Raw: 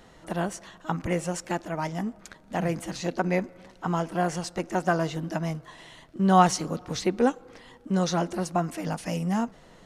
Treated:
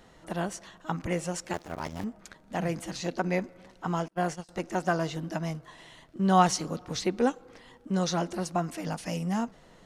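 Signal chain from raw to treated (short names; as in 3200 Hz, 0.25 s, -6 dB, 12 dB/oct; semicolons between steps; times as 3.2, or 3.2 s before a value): 1.53–2.04 cycle switcher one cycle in 2, muted; 4.08–4.49 gate -29 dBFS, range -33 dB; dynamic EQ 4600 Hz, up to +3 dB, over -47 dBFS, Q 0.83; gain -3 dB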